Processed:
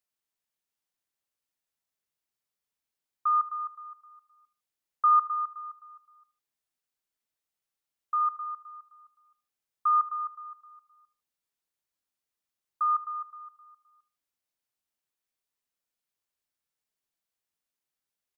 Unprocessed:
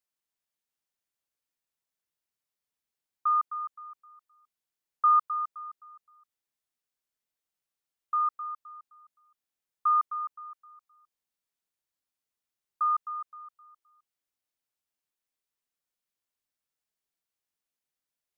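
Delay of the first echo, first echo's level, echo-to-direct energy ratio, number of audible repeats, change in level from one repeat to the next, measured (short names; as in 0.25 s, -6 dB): 77 ms, -18.0 dB, -17.5 dB, 2, -8.0 dB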